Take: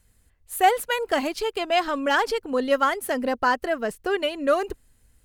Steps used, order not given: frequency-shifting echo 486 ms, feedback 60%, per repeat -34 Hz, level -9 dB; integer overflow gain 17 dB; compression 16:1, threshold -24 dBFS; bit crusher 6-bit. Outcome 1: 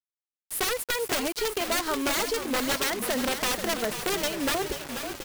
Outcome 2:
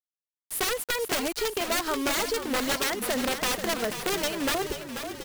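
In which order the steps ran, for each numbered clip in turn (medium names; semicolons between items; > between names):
integer overflow > compression > frequency-shifting echo > bit crusher; integer overflow > bit crusher > compression > frequency-shifting echo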